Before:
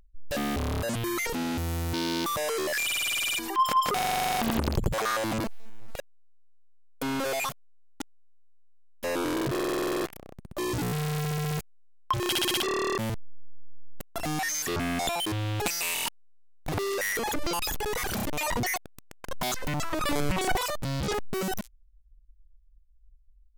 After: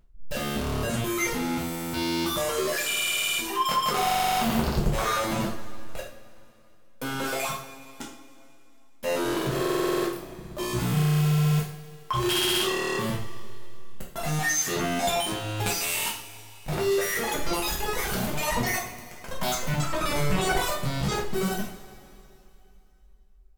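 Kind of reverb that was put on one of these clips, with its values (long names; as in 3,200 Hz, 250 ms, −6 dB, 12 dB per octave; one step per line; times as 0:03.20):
coupled-rooms reverb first 0.45 s, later 2.9 s, from −19 dB, DRR −4.5 dB
level −3.5 dB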